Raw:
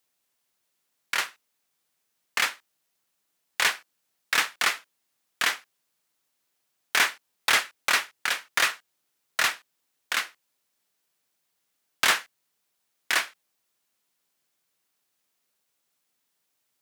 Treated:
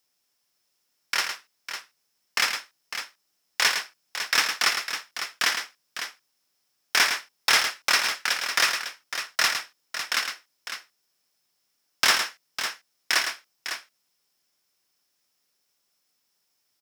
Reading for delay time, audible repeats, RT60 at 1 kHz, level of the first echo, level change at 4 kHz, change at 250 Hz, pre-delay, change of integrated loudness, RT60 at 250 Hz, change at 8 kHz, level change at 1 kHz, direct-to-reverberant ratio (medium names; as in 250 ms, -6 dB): 109 ms, 2, no reverb, -7.5 dB, +4.0 dB, +1.0 dB, no reverb, +1.0 dB, no reverb, +3.0 dB, +1.0 dB, no reverb